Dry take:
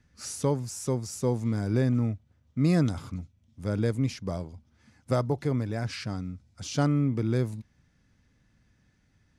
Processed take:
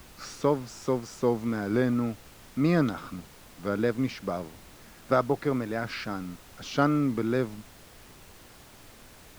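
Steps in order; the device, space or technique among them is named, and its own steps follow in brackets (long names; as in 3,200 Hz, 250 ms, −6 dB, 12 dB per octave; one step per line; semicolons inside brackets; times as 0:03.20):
horn gramophone (band-pass filter 230–3,800 Hz; parametric band 1,300 Hz +6 dB 0.51 octaves; tape wow and flutter; pink noise bed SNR 21 dB)
level +3.5 dB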